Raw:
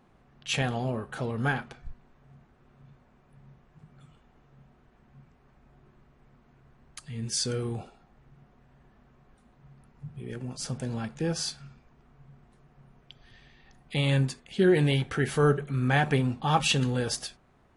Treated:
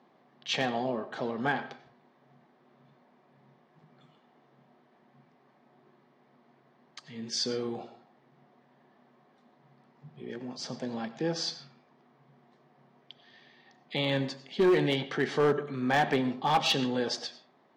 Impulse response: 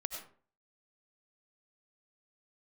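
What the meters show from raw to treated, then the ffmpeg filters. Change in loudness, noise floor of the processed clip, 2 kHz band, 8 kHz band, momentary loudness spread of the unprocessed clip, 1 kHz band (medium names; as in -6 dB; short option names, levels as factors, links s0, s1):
-2.0 dB, -65 dBFS, -1.5 dB, -7.0 dB, 17 LU, +1.0 dB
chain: -filter_complex "[0:a]highpass=f=200:w=0.5412,highpass=f=200:w=1.3066,equalizer=f=200:t=q:w=4:g=-5,equalizer=f=300:t=q:w=4:g=-3,equalizer=f=460:t=q:w=4:g=-3,equalizer=f=1400:t=q:w=4:g=-8,equalizer=f=2600:t=q:w=4:g=-7,lowpass=f=5400:w=0.5412,lowpass=f=5400:w=1.3066,asplit=2[s0][s1];[1:a]atrim=start_sample=2205,lowpass=7300[s2];[s1][s2]afir=irnorm=-1:irlink=0,volume=0.473[s3];[s0][s3]amix=inputs=2:normalize=0,volume=8.91,asoftclip=hard,volume=0.112"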